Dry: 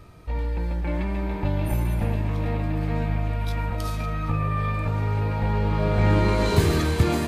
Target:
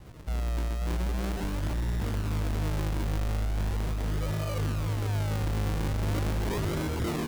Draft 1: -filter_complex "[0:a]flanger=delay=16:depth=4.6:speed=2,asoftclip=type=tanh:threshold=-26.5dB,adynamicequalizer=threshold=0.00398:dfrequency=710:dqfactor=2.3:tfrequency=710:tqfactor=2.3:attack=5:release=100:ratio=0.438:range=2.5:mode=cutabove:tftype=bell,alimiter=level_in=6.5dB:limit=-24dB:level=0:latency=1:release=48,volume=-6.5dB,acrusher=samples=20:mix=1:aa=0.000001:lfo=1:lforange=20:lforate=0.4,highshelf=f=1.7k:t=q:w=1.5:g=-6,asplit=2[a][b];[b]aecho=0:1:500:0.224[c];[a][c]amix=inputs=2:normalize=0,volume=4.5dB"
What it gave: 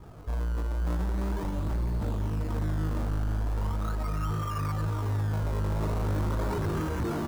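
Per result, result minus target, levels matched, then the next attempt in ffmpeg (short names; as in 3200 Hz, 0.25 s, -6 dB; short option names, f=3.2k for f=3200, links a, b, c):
echo 0.212 s late; 4000 Hz band -6.5 dB; decimation with a swept rate: distortion -4 dB
-filter_complex "[0:a]flanger=delay=16:depth=4.6:speed=2,asoftclip=type=tanh:threshold=-26.5dB,adynamicequalizer=threshold=0.00398:dfrequency=710:dqfactor=2.3:tfrequency=710:tqfactor=2.3:attack=5:release=100:ratio=0.438:range=2.5:mode=cutabove:tftype=bell,alimiter=level_in=6.5dB:limit=-24dB:level=0:latency=1:release=48,volume=-6.5dB,acrusher=samples=20:mix=1:aa=0.000001:lfo=1:lforange=20:lforate=0.4,highshelf=f=1.7k:t=q:w=1.5:g=-6,asplit=2[a][b];[b]aecho=0:1:288:0.224[c];[a][c]amix=inputs=2:normalize=0,volume=4.5dB"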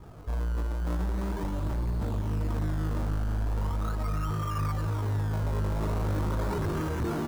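4000 Hz band -6.5 dB; decimation with a swept rate: distortion -4 dB
-filter_complex "[0:a]flanger=delay=16:depth=4.6:speed=2,asoftclip=type=tanh:threshold=-26.5dB,adynamicequalizer=threshold=0.00398:dfrequency=710:dqfactor=2.3:tfrequency=710:tqfactor=2.3:attack=5:release=100:ratio=0.438:range=2.5:mode=cutabove:tftype=bell,alimiter=level_in=6.5dB:limit=-24dB:level=0:latency=1:release=48,volume=-6.5dB,acrusher=samples=20:mix=1:aa=0.000001:lfo=1:lforange=20:lforate=0.4,asplit=2[a][b];[b]aecho=0:1:288:0.224[c];[a][c]amix=inputs=2:normalize=0,volume=4.5dB"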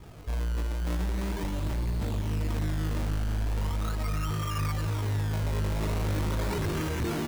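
decimation with a swept rate: distortion -4 dB
-filter_complex "[0:a]flanger=delay=16:depth=4.6:speed=2,asoftclip=type=tanh:threshold=-26.5dB,adynamicequalizer=threshold=0.00398:dfrequency=710:dqfactor=2.3:tfrequency=710:tqfactor=2.3:attack=5:release=100:ratio=0.438:range=2.5:mode=cutabove:tftype=bell,alimiter=level_in=6.5dB:limit=-24dB:level=0:latency=1:release=48,volume=-6.5dB,acrusher=samples=47:mix=1:aa=0.000001:lfo=1:lforange=47:lforate=0.4,asplit=2[a][b];[b]aecho=0:1:288:0.224[c];[a][c]amix=inputs=2:normalize=0,volume=4.5dB"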